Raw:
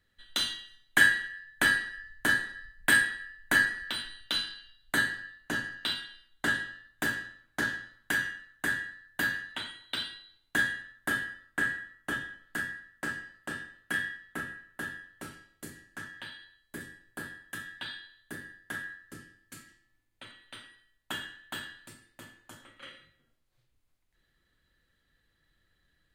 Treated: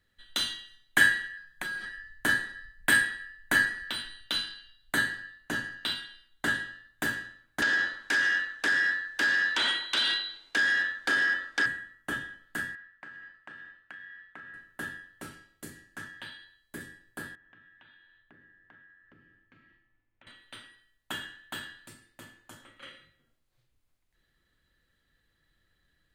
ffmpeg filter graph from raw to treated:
ffmpeg -i in.wav -filter_complex "[0:a]asettb=1/sr,asplit=3[link_01][link_02][link_03];[link_01]atrim=end=1.374[link_04];[link_02]atrim=start=1.37:end=1.86,asetpts=PTS-STARTPTS,afade=type=in:duration=0.004:curve=qsin,afade=type=out:start_time=0.486:duration=0.004:curve=qsin,aecho=1:1:5.5:0.78,atrim=end_sample=21609,acompressor=threshold=-32dB:ratio=10:attack=3.2:release=140:knee=1:detection=peak[link_05];[link_03]atrim=start=1.856[link_06];[link_04][link_05]acrossfade=duration=0.004:curve1=hsin:curve2=qsin[link_07];[link_07][link_06]acrossfade=duration=0.004:curve1=qsin:curve2=hsin,asettb=1/sr,asplit=3[link_08][link_09][link_10];[link_08]atrim=end=7.624[link_11];[link_09]atrim=start=7.62:end=11.66,asetpts=PTS-STARTPTS,afade=type=in:duration=0.004:curve=qsin,afade=type=out:start_time=4.036:duration=0.004:curve=qsin,acompressor=threshold=-38dB:ratio=6:attack=3.2:release=140:knee=1:detection=peak,aeval=exprs='0.0891*sin(PI/2*5.62*val(0)/0.0891)':channel_layout=same,acrossover=split=280 7900:gain=0.141 1 0.0794[link_12][link_13][link_14];[link_12][link_13][link_14]amix=inputs=3:normalize=0[link_15];[link_10]atrim=start=11.656[link_16];[link_11][link_15]acrossfade=duration=0.004:curve1=hsin:curve2=qsin[link_17];[link_17][link_16]acrossfade=duration=0.004:curve1=qsin:curve2=hsin,asettb=1/sr,asplit=3[link_18][link_19][link_20];[link_18]atrim=end=12.754[link_21];[link_19]atrim=start=12.75:end=14.54,asetpts=PTS-STARTPTS,afade=type=in:duration=0.004:curve=qsin,afade=type=out:start_time=1.786:duration=0.004:curve=qsin,lowpass=1900,tiltshelf=frequency=1100:gain=-8,acompressor=threshold=-42dB:ratio=12:attack=3.2:release=140:knee=1:detection=peak[link_22];[link_20]atrim=start=14.536[link_23];[link_21][link_22]acrossfade=duration=0.004:curve1=hsin:curve2=qsin[link_24];[link_24][link_23]acrossfade=duration=0.004:curve1=qsin:curve2=hsin,asettb=1/sr,asplit=3[link_25][link_26][link_27];[link_25]atrim=end=17.354[link_28];[link_26]atrim=start=17.35:end=20.27,asetpts=PTS-STARTPTS,afade=type=in:duration=0.004:curve=qsin,afade=type=out:start_time=2.916:duration=0.004:curve=qsin,lowpass=frequency=2800:width=0.5412,lowpass=frequency=2800:width=1.3066,acompressor=threshold=-58dB:ratio=4:attack=3.2:release=140:knee=1:detection=peak[link_29];[link_27]atrim=start=20.266[link_30];[link_28][link_29]acrossfade=duration=0.004:curve1=hsin:curve2=qsin[link_31];[link_31][link_30]acrossfade=duration=0.004:curve1=qsin:curve2=hsin" out.wav

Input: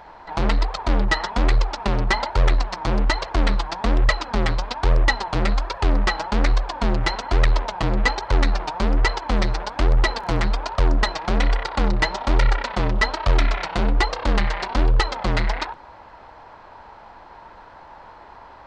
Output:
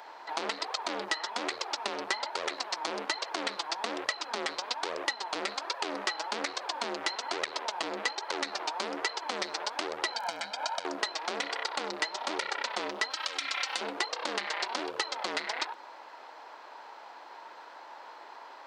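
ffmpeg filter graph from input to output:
ffmpeg -i in.wav -filter_complex "[0:a]asettb=1/sr,asplit=3[link_01][link_02][link_03];[link_01]atrim=end=10.124[link_04];[link_02]atrim=start=10.12:end=10.85,asetpts=PTS-STARTPTS,afade=type=in:duration=0.004:curve=qsin,afade=type=out:start_time=0.726:duration=0.004:curve=qsin,acompressor=threshold=-24dB:ratio=5:attack=3.2:release=140:knee=1:detection=peak,aecho=1:1:1.3:0.89,atrim=end_sample=32193[link_05];[link_03]atrim=start=10.846[link_06];[link_04][link_05]acrossfade=duration=0.004:curve1=hsin:curve2=qsin[link_07];[link_07][link_06]acrossfade=duration=0.004:curve1=qsin:curve2=hsin,asettb=1/sr,asplit=3[link_08][link_09][link_10];[link_08]atrim=end=13.104[link_11];[link_09]atrim=start=13.1:end=13.81,asetpts=PTS-STARTPTS,afade=type=in:duration=0.004:curve=qsin,afade=type=out:start_time=0.706:duration=0.004:curve=qsin,tiltshelf=frequency=1100:gain=-7,aecho=1:1:3.8:0.77,atrim=end_sample=31311,acompressor=threshold=-22dB:ratio=4:attack=3.2:release=140:knee=1:detection=peak[link_12];[link_10]atrim=start=13.806[link_13];[link_11][link_12]acrossfade=duration=0.004:curve1=hsin:curve2=qsin[link_14];[link_14][link_13]acrossfade=duration=0.004:curve1=qsin:curve2=hsin,highpass=frequency=310:width=0.5412,highpass=frequency=310:width=1.3066,highshelf=frequency=2700:gain=11.5,acompressor=threshold=-23dB:ratio=6,volume=-5.5dB" out.wav

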